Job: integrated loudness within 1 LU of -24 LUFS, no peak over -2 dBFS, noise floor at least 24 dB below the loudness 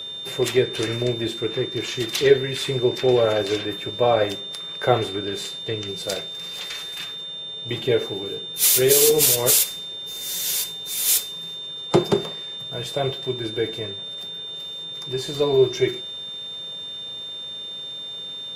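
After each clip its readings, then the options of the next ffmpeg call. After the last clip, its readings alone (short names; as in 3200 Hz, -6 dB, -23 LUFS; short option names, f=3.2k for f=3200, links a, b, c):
steady tone 3600 Hz; tone level -31 dBFS; loudness -22.5 LUFS; peak -3.0 dBFS; loudness target -24.0 LUFS
-> -af "bandreject=f=3.6k:w=30"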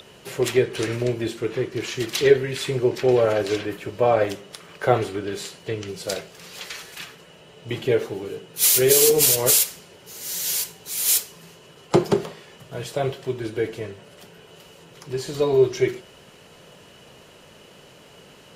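steady tone none; loudness -21.5 LUFS; peak -2.5 dBFS; loudness target -24.0 LUFS
-> -af "volume=-2.5dB"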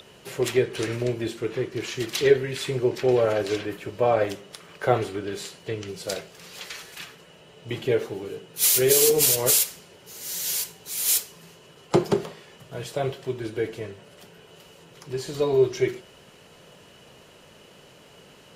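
loudness -24.0 LUFS; peak -5.0 dBFS; noise floor -52 dBFS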